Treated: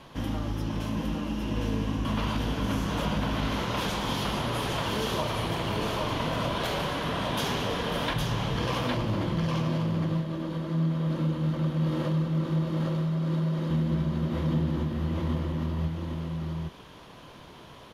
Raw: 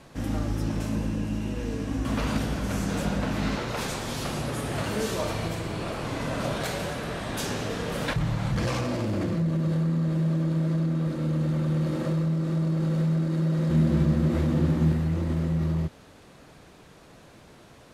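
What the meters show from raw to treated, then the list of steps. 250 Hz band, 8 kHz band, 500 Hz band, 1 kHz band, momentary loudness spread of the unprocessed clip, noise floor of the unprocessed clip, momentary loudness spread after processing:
−2.5 dB, −4.0 dB, −1.0 dB, +3.0 dB, 7 LU, −51 dBFS, 6 LU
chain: thirty-one-band graphic EQ 1,000 Hz +8 dB, 3,150 Hz +9 dB, 8,000 Hz −11 dB
downward compressor, threshold −26 dBFS, peak gain reduction 8.5 dB
single-tap delay 810 ms −3.5 dB

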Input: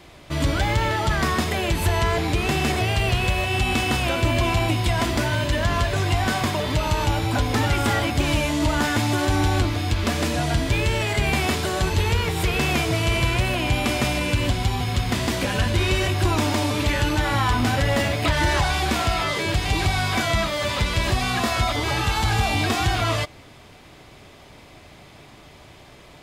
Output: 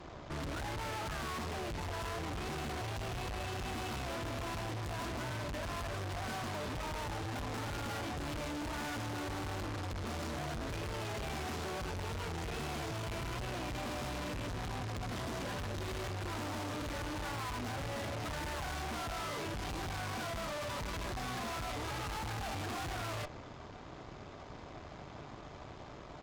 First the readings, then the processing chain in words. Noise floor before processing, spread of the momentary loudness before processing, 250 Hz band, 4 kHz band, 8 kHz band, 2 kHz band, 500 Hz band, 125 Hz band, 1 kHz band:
−47 dBFS, 2 LU, −17.0 dB, −18.0 dB, −16.0 dB, −18.0 dB, −16.0 dB, −18.5 dB, −15.0 dB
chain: downsampling to 16,000 Hz
high shelf with overshoot 1,700 Hz −6.5 dB, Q 1.5
tube saturation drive 41 dB, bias 0.8
level +2.5 dB

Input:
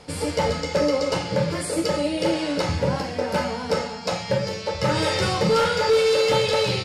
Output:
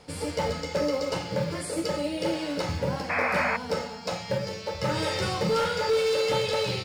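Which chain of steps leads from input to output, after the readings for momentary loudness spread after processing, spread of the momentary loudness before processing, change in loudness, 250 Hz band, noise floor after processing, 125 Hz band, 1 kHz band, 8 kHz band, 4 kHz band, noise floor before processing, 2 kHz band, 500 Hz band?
7 LU, 7 LU, −5.0 dB, −5.5 dB, −38 dBFS, −5.5 dB, −4.5 dB, −5.5 dB, −5.5 dB, −33 dBFS, −2.0 dB, −5.5 dB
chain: in parallel at −10 dB: floating-point word with a short mantissa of 2 bits
on the sum: sound drawn into the spectrogram noise, 0:03.09–0:03.57, 540–2,600 Hz −19 dBFS
level −8 dB

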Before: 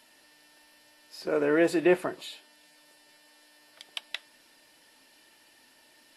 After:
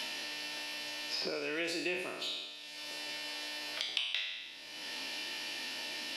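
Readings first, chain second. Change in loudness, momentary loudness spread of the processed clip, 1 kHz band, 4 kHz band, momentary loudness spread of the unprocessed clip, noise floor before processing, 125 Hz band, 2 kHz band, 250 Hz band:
−9.0 dB, 7 LU, −6.5 dB, +9.0 dB, 18 LU, −61 dBFS, −14.0 dB, −0.5 dB, −14.0 dB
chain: peak hold with a decay on every bin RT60 0.81 s
flat-topped bell 3,800 Hz +11 dB
multiband upward and downward compressor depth 100%
level −8 dB

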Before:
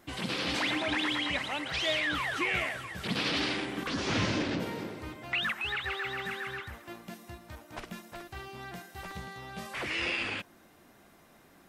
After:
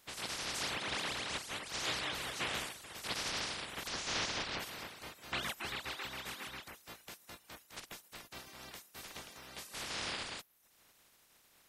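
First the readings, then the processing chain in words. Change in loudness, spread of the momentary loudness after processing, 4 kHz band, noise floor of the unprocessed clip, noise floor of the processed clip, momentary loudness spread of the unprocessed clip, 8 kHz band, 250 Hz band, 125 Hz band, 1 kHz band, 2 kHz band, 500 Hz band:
−8.0 dB, 14 LU, −5.0 dB, −59 dBFS, −68 dBFS, 16 LU, +3.5 dB, −15.0 dB, −12.0 dB, −6.5 dB, −9.0 dB, −10.0 dB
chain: ceiling on every frequency bin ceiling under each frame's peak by 25 dB
reverb reduction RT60 0.58 s
level −6 dB

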